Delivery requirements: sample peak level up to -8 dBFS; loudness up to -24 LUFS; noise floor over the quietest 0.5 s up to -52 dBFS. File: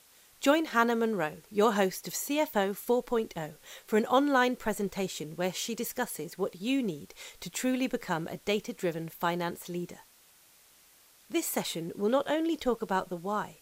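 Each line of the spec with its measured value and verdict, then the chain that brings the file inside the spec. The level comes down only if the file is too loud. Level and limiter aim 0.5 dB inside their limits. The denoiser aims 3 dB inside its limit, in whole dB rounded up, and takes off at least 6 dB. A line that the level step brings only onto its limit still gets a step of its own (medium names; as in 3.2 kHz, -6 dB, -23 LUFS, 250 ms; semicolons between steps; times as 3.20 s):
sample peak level -9.5 dBFS: pass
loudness -30.5 LUFS: pass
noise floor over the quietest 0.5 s -60 dBFS: pass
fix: none needed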